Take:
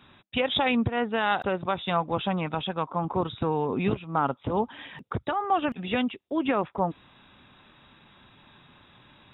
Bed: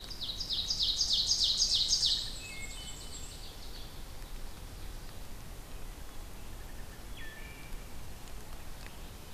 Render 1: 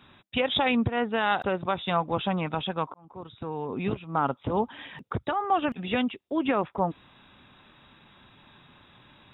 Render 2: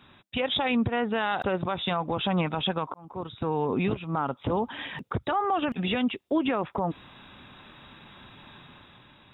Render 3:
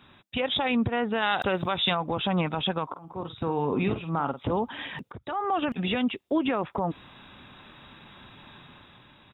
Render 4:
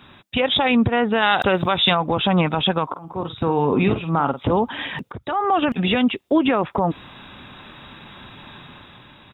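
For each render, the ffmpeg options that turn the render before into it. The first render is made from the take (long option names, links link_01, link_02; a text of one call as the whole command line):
ffmpeg -i in.wav -filter_complex "[0:a]asplit=2[link_01][link_02];[link_01]atrim=end=2.94,asetpts=PTS-STARTPTS,afade=type=out:start_time=2.936:duration=0.004:curve=hsin[link_03];[link_02]atrim=start=2.94,asetpts=PTS-STARTPTS,afade=type=in:duration=1.35[link_04];[link_03][link_04]concat=n=2:v=0:a=1" out.wav
ffmpeg -i in.wav -af "dynaudnorm=framelen=100:gausssize=13:maxgain=6dB,alimiter=limit=-17.5dB:level=0:latency=1:release=97" out.wav
ffmpeg -i in.wav -filter_complex "[0:a]asettb=1/sr,asplit=3[link_01][link_02][link_03];[link_01]atrim=end=1.224[link_04];[link_02]atrim=start=1.22:end=1.95,asetpts=PTS-STARTPTS,afade=type=in:duration=0.004:curve=qsin,afade=type=out:start_time=0.726:duration=0.004:curve=qsin,highshelf=frequency=2300:gain=10.5[link_05];[link_03]atrim=start=1.946[link_06];[link_04][link_05]acrossfade=duration=0.004:curve1=hsin:curve2=qsin[link_07];[link_07][link_06]acrossfade=duration=0.004:curve1=qsin:curve2=hsin,asplit=3[link_08][link_09][link_10];[link_08]afade=type=out:start_time=2.93:duration=0.02[link_11];[link_09]asplit=2[link_12][link_13];[link_13]adelay=48,volume=-9.5dB[link_14];[link_12][link_14]amix=inputs=2:normalize=0,afade=type=in:start_time=2.93:duration=0.02,afade=type=out:start_time=4.41:duration=0.02[link_15];[link_10]afade=type=in:start_time=4.41:duration=0.02[link_16];[link_11][link_15][link_16]amix=inputs=3:normalize=0,asplit=2[link_17][link_18];[link_17]atrim=end=5.12,asetpts=PTS-STARTPTS,afade=type=out:start_time=5.116:duration=0.004:curve=hsin:silence=0.141254[link_19];[link_18]atrim=start=5.12,asetpts=PTS-STARTPTS,afade=type=in:duration=0.43:silence=0.141254[link_20];[link_19][link_20]concat=n=2:v=0:a=1" out.wav
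ffmpeg -i in.wav -af "volume=8dB" out.wav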